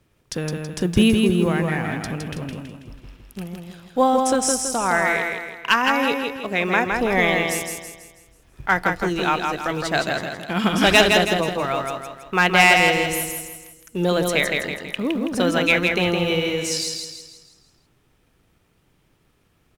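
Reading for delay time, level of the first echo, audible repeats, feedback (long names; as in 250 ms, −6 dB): 163 ms, −4.0 dB, 5, 44%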